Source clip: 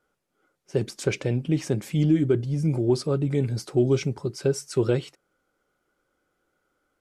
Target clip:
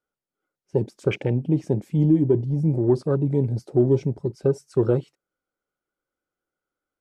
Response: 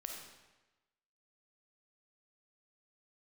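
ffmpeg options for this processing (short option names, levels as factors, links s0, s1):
-af "afwtdn=0.0178,volume=1.33"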